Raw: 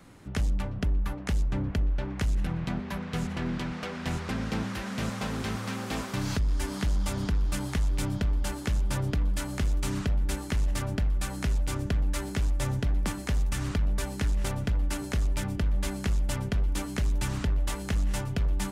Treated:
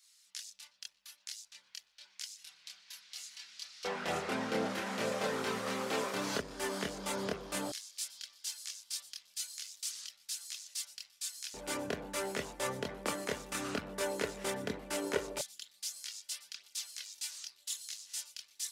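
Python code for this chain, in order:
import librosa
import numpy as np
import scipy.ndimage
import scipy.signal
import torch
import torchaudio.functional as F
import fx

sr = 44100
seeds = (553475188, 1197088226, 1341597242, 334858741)

y = fx.filter_lfo_highpass(x, sr, shape='square', hz=0.13, low_hz=410.0, high_hz=4800.0, q=1.7)
y = fx.chorus_voices(y, sr, voices=6, hz=0.5, base_ms=26, depth_ms=1.1, mix_pct=50)
y = F.gain(torch.from_numpy(y), 2.0).numpy()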